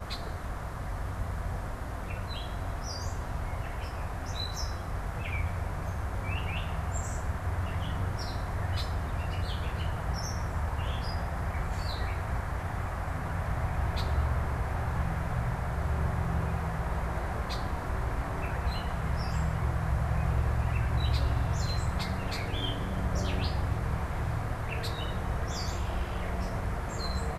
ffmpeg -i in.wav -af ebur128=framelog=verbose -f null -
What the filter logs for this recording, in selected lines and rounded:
Integrated loudness:
  I:         -33.2 LUFS
  Threshold: -43.2 LUFS
Loudness range:
  LRA:         5.5 LU
  Threshold: -53.0 LUFS
  LRA low:   -36.0 LUFS
  LRA high:  -30.6 LUFS